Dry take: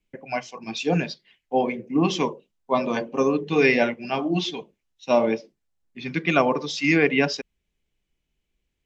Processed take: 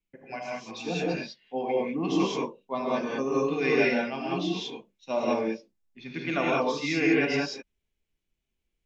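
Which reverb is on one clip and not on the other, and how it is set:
reverb whose tail is shaped and stops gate 220 ms rising, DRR −4.5 dB
level −10.5 dB

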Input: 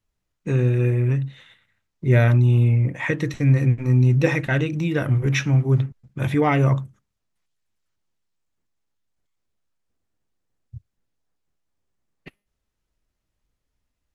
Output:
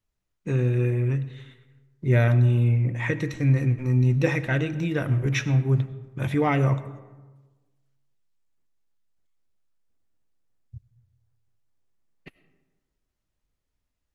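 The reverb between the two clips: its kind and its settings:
comb and all-pass reverb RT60 1.3 s, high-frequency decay 0.45×, pre-delay 55 ms, DRR 14.5 dB
level −3.5 dB

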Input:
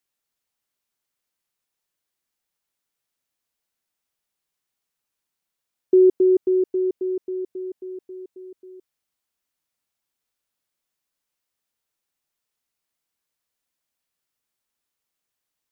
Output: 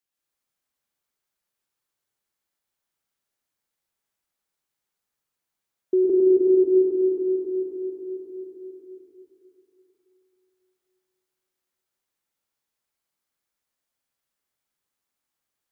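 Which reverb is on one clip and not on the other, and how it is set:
dense smooth reverb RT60 3.1 s, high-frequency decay 0.45×, pre-delay 95 ms, DRR −5 dB
level −6 dB

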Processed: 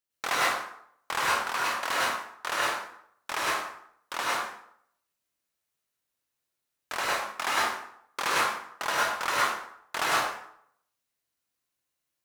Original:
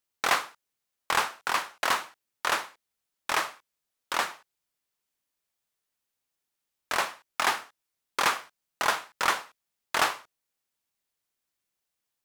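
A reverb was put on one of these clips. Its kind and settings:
dense smooth reverb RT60 0.67 s, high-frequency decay 0.7×, pre-delay 90 ms, DRR −6 dB
level −6 dB

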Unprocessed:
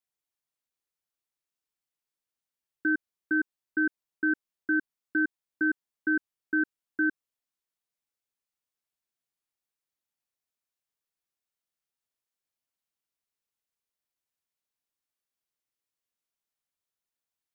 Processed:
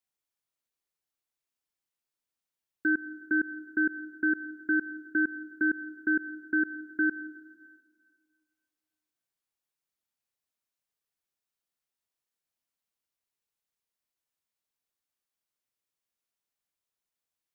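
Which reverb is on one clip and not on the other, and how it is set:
dense smooth reverb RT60 1.9 s, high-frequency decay 0.85×, pre-delay 90 ms, DRR 15.5 dB

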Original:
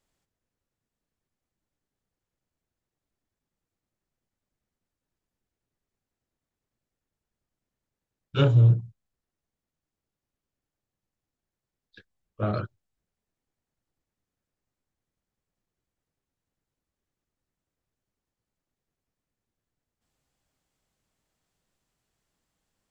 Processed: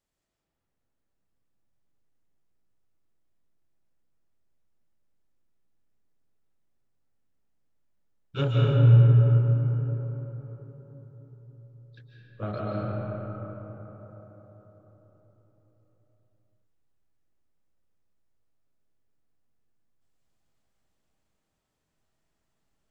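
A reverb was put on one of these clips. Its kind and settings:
comb and all-pass reverb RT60 4.8 s, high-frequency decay 0.35×, pre-delay 105 ms, DRR −5 dB
level −6 dB

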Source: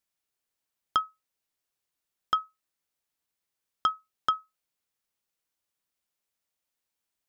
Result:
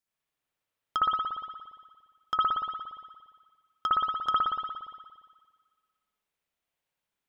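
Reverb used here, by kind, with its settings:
spring reverb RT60 1.6 s, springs 58 ms, chirp 60 ms, DRR −7.5 dB
level −5 dB

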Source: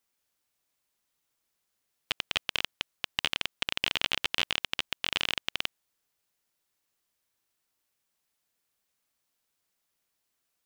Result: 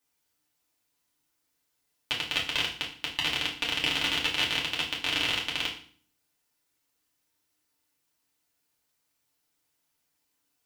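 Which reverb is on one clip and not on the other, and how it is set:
feedback delay network reverb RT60 0.46 s, low-frequency decay 1.45×, high-frequency decay 1×, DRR −4 dB
level −2.5 dB

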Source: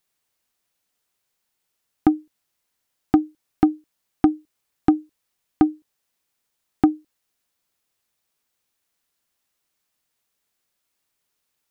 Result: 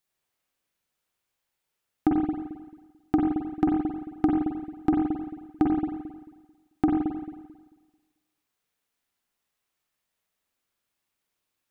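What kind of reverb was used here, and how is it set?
spring reverb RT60 1.3 s, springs 44/55 ms, chirp 45 ms, DRR −2 dB
level −6.5 dB

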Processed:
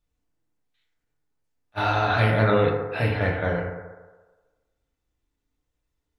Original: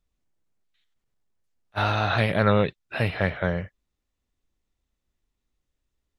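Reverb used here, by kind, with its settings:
feedback delay network reverb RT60 1.3 s, low-frequency decay 0.7×, high-frequency decay 0.3×, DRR −2.5 dB
level −3 dB

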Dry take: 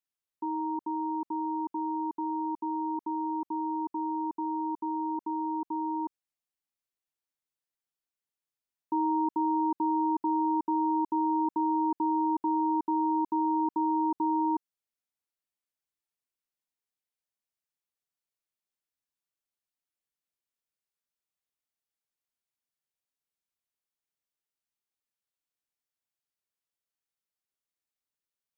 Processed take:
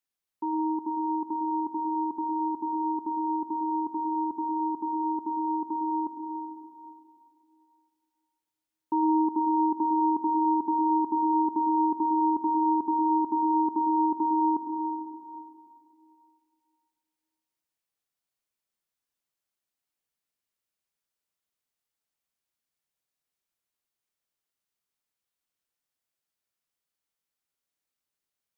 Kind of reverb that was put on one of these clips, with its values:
dense smooth reverb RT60 2.6 s, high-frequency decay 0.8×, pre-delay 95 ms, DRR 4 dB
level +2.5 dB

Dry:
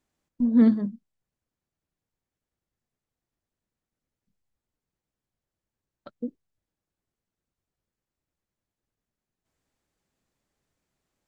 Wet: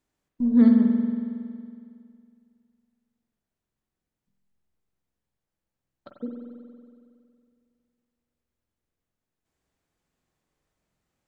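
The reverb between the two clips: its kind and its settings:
spring reverb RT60 2.3 s, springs 46 ms, chirp 45 ms, DRR 1.5 dB
level −1.5 dB

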